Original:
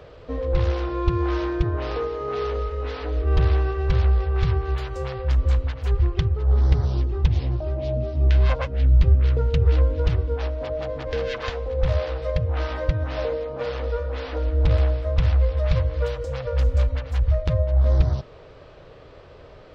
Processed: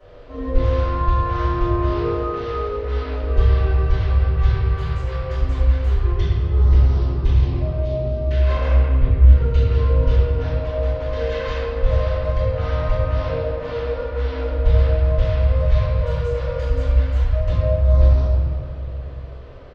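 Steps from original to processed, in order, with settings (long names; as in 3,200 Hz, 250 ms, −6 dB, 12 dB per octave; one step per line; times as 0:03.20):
0:08.69–0:09.29: low-pass filter 2,600 Hz 12 dB per octave
far-end echo of a speakerphone 290 ms, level −15 dB
convolution reverb RT60 2.1 s, pre-delay 3 ms, DRR −20 dB
level −18 dB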